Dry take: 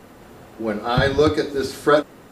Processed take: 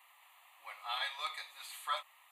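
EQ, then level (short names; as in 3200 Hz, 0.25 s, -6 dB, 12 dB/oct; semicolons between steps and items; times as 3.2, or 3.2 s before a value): HPF 1100 Hz 24 dB/oct; fixed phaser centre 1500 Hz, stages 6; -6.5 dB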